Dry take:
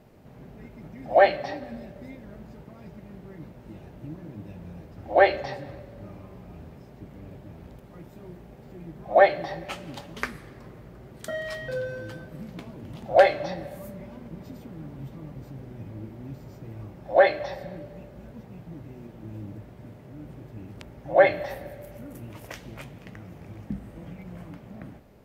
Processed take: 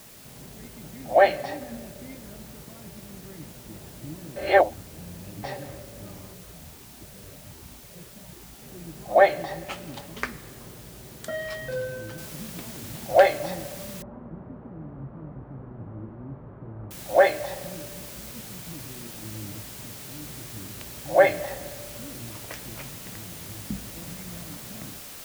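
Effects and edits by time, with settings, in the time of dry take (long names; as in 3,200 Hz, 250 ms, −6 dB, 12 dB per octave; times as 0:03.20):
0:02.34–0:03.06: parametric band 5,200 Hz +8 dB 0.24 octaves
0:04.36–0:05.43: reverse
0:06.33–0:08.62: step-sequenced phaser 10 Hz 280–1,800 Hz
0:12.18: noise floor change −49 dB −42 dB
0:14.02–0:16.91: low-pass filter 1,200 Hz 24 dB per octave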